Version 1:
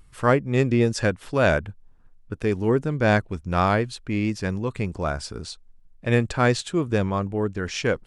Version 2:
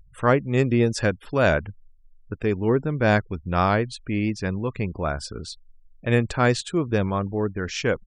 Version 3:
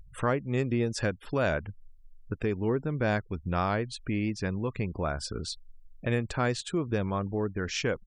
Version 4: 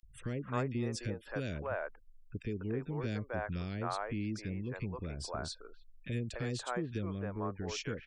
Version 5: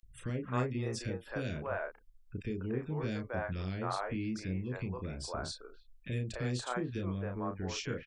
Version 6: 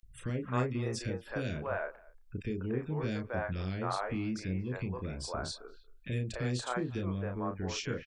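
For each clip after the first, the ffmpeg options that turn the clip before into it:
ffmpeg -i in.wav -af "afftfilt=real='re*gte(hypot(re,im),0.00708)':imag='im*gte(hypot(re,im),0.00708)':win_size=1024:overlap=0.75" out.wav
ffmpeg -i in.wav -af "acompressor=threshold=-33dB:ratio=2,volume=1.5dB" out.wav
ffmpeg -i in.wav -filter_complex "[0:a]acrossover=split=450|2000[link_01][link_02][link_03];[link_01]adelay=30[link_04];[link_02]adelay=290[link_05];[link_04][link_05][link_03]amix=inputs=3:normalize=0,volume=-6.5dB" out.wav
ffmpeg -i in.wav -filter_complex "[0:a]asplit=2[link_01][link_02];[link_02]adelay=32,volume=-5.5dB[link_03];[link_01][link_03]amix=inputs=2:normalize=0" out.wav
ffmpeg -i in.wav -filter_complex "[0:a]asplit=2[link_01][link_02];[link_02]adelay=230,highpass=300,lowpass=3400,asoftclip=type=hard:threshold=-27dB,volume=-23dB[link_03];[link_01][link_03]amix=inputs=2:normalize=0,volume=1.5dB" out.wav

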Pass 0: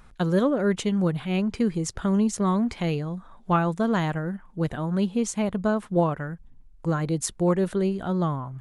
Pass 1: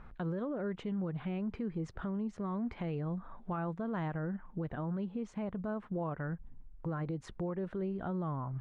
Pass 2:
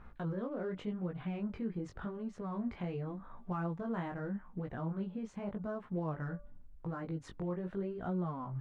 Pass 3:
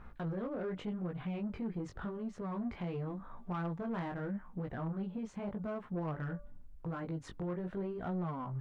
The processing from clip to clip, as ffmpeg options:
ffmpeg -i in.wav -af "lowpass=1900,acompressor=threshold=-33dB:ratio=4,alimiter=level_in=5.5dB:limit=-24dB:level=0:latency=1:release=41,volume=-5.5dB" out.wav
ffmpeg -i in.wav -af "aeval=exprs='0.0355*(cos(1*acos(clip(val(0)/0.0355,-1,1)))-cos(1*PI/2))+0.000282*(cos(8*acos(clip(val(0)/0.0355,-1,1)))-cos(8*PI/2))':channel_layout=same,bandreject=frequency=290:width_type=h:width=4,bandreject=frequency=580:width_type=h:width=4,bandreject=frequency=870:width_type=h:width=4,bandreject=frequency=1160:width_type=h:width=4,bandreject=frequency=1450:width_type=h:width=4,flanger=delay=16.5:depth=6:speed=0.86,volume=1.5dB" out.wav
ffmpeg -i in.wav -af "asoftclip=type=tanh:threshold=-33.5dB,volume=2dB" out.wav

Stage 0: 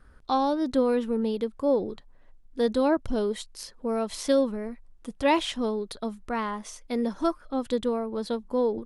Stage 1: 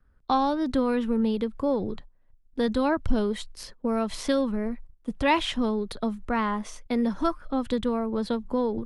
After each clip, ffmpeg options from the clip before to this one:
ffmpeg -i in.wav -filter_complex "[0:a]agate=range=-17dB:threshold=-46dB:ratio=16:detection=peak,bass=frequency=250:gain=5,treble=frequency=4000:gain=-7,acrossover=split=210|820|2300[link_01][link_02][link_03][link_04];[link_02]acompressor=threshold=-32dB:ratio=6[link_05];[link_01][link_05][link_03][link_04]amix=inputs=4:normalize=0,volume=4dB" out.wav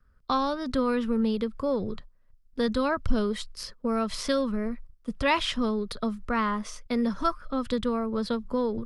ffmpeg -i in.wav -af "equalizer=frequency=315:width_type=o:width=0.33:gain=-8,equalizer=frequency=800:width_type=o:width=0.33:gain=-8,equalizer=frequency=1250:width_type=o:width=0.33:gain=5,equalizer=frequency=5000:width_type=o:width=0.33:gain=6" out.wav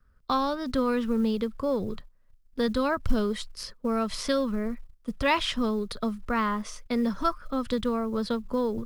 ffmpeg -i in.wav -af "acrusher=bits=9:mode=log:mix=0:aa=0.000001" out.wav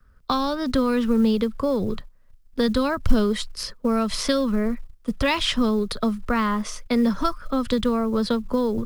ffmpeg -i in.wav -filter_complex "[0:a]acrossover=split=260|3000[link_01][link_02][link_03];[link_02]acompressor=threshold=-28dB:ratio=6[link_04];[link_01][link_04][link_03]amix=inputs=3:normalize=0,volume=7dB" out.wav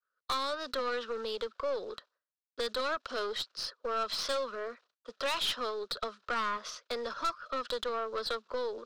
ffmpeg -i in.wav -af "highpass=frequency=470:width=0.5412,highpass=frequency=470:width=1.3066,equalizer=frequency=830:width_type=q:width=4:gain=-7,equalizer=frequency=1400:width_type=q:width=4:gain=6,equalizer=frequency=2100:width_type=q:width=4:gain=-7,equalizer=frequency=4000:width_type=q:width=4:gain=5,lowpass=frequency=5800:width=0.5412,lowpass=frequency=5800:width=1.3066,aeval=exprs='(tanh(14.1*val(0)+0.35)-tanh(0.35))/14.1':channel_layout=same,agate=range=-33dB:threshold=-57dB:ratio=3:detection=peak,volume=-4dB" out.wav

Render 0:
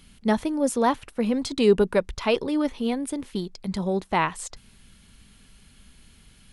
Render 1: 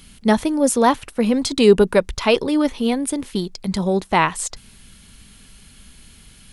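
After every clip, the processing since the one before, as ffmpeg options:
ffmpeg -i in.wav -af "highshelf=frequency=4400:gain=5,volume=6dB" out.wav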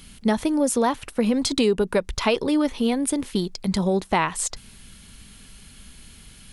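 ffmpeg -i in.wav -af "acompressor=threshold=-17dB:ratio=6" out.wav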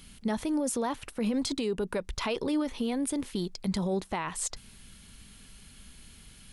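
ffmpeg -i in.wav -af "alimiter=limit=-16.5dB:level=0:latency=1:release=20,volume=-5.5dB" out.wav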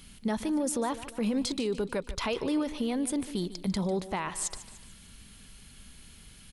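ffmpeg -i in.wav -af "aecho=1:1:148|296|444|592:0.178|0.0854|0.041|0.0197" out.wav

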